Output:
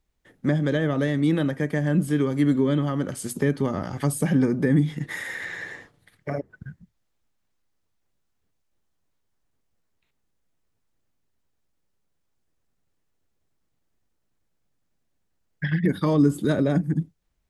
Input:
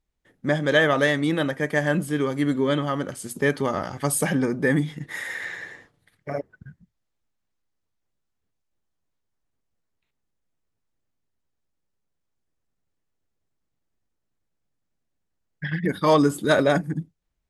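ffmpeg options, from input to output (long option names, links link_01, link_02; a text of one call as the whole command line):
ffmpeg -i in.wav -filter_complex "[0:a]acrossover=split=340[link_01][link_02];[link_02]acompressor=threshold=-35dB:ratio=5[link_03];[link_01][link_03]amix=inputs=2:normalize=0,volume=4.5dB" out.wav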